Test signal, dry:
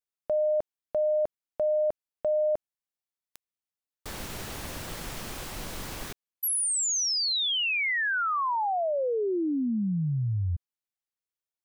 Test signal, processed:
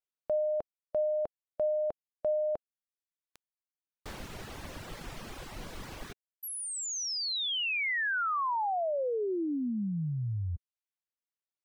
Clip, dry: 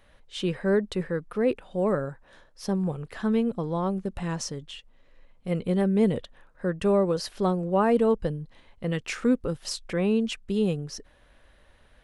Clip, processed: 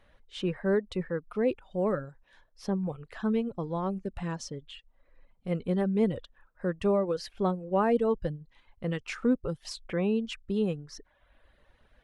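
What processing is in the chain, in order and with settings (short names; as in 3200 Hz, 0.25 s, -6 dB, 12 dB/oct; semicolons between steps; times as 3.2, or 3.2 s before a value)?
LPF 3800 Hz 6 dB/oct; reverb removal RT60 0.76 s; gain -2.5 dB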